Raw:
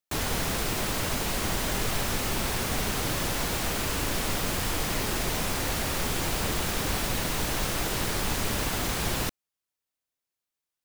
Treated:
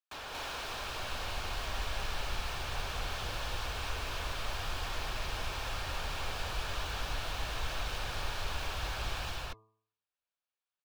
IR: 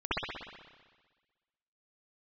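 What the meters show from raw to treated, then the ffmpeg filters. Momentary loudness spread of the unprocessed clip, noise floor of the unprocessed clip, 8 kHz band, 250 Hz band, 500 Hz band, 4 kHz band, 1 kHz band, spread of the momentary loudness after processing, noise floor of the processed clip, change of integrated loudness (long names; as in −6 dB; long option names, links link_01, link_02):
0 LU, below −85 dBFS, −15.5 dB, −18.5 dB, −11.0 dB, −7.0 dB, −6.5 dB, 1 LU, below −85 dBFS, −9.5 dB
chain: -filter_complex "[0:a]acrossover=split=510 4500:gain=0.112 1 0.141[link_01][link_02][link_03];[link_01][link_02][link_03]amix=inputs=3:normalize=0,bandreject=frequency=2000:width=6.6,bandreject=frequency=109.4:width_type=h:width=4,bandreject=frequency=218.8:width_type=h:width=4,bandreject=frequency=328.2:width_type=h:width=4,bandreject=frequency=437.6:width_type=h:width=4,bandreject=frequency=547:width_type=h:width=4,bandreject=frequency=656.4:width_type=h:width=4,bandreject=frequency=765.8:width_type=h:width=4,bandreject=frequency=875.2:width_type=h:width=4,bandreject=frequency=984.6:width_type=h:width=4,bandreject=frequency=1094:width_type=h:width=4,bandreject=frequency=1203.4:width_type=h:width=4,acrossover=split=100|3100[link_04][link_05][link_06];[link_04]dynaudnorm=framelen=340:gausssize=5:maxgain=16dB[link_07];[link_05]asoftclip=type=tanh:threshold=-37dB[link_08];[link_06]tremolo=f=2.2:d=0.47[link_09];[link_07][link_08][link_09]amix=inputs=3:normalize=0,flanger=delay=0.1:depth=3.2:regen=-78:speed=1:shape=triangular,asplit=2[link_10][link_11];[link_11]aecho=0:1:125.4|233.2:0.282|1[link_12];[link_10][link_12]amix=inputs=2:normalize=0"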